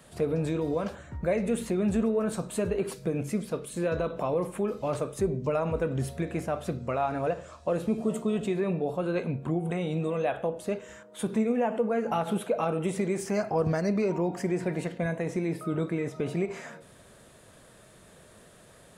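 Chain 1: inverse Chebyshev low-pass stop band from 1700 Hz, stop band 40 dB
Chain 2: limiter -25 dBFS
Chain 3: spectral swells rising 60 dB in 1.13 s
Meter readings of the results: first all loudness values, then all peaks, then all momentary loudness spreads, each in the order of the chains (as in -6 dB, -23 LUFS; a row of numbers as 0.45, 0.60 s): -30.0, -34.5, -27.0 LUFS; -16.5, -25.0, -12.0 dBFS; 5, 15, 4 LU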